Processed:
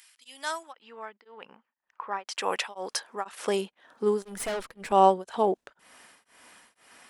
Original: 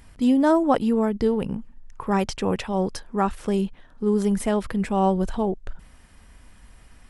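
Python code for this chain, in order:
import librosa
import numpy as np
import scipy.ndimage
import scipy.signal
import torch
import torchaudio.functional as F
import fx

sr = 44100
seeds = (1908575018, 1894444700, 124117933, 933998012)

y = fx.low_shelf(x, sr, hz=360.0, db=-5.5)
y = fx.filter_sweep_highpass(y, sr, from_hz=2600.0, to_hz=360.0, start_s=0.27, end_s=3.95, q=0.7)
y = fx.spacing_loss(y, sr, db_at_10k=37, at=(0.71, 2.26), fade=0.02)
y = fx.tube_stage(y, sr, drive_db=33.0, bias=0.7, at=(4.22, 4.92))
y = y * np.abs(np.cos(np.pi * 2.0 * np.arange(len(y)) / sr))
y = y * 10.0 ** (6.0 / 20.0)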